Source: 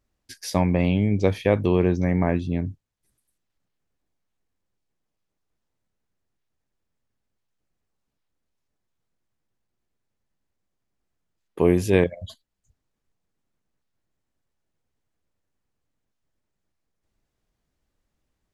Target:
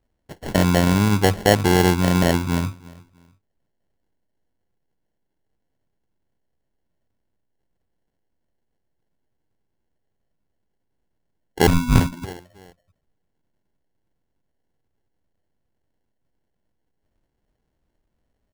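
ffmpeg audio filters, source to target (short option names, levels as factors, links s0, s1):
-filter_complex "[0:a]asplit=2[s0][s1];[s1]adelay=330,lowpass=f=1300:p=1,volume=0.0794,asplit=2[s2][s3];[s3]adelay=330,lowpass=f=1300:p=1,volume=0.31[s4];[s0][s2][s4]amix=inputs=3:normalize=0,asettb=1/sr,asplit=3[s5][s6][s7];[s5]atrim=end=11.674[s8];[s6]atrim=start=11.67:end=12.24,asetpts=PTS-STARTPTS,afade=t=in:d=0.004:c=qsin,afade=t=out:st=0.566:d=0.004:c=qsin,lowpass=f=2400:t=q:w=0.5098,lowpass=f=2400:t=q:w=0.6013,lowpass=f=2400:t=q:w=0.9,lowpass=f=2400:t=q:w=2.563,afreqshift=-2800[s9];[s7]atrim=start=12.236[s10];[s8][s9]acrossfade=d=0.004:c1=hsin:c2=qsin[s11];[s11][s10]acrossfade=d=0.004:c1=qsin:c2=hsin,acrusher=samples=36:mix=1:aa=0.000001,volume=1.5"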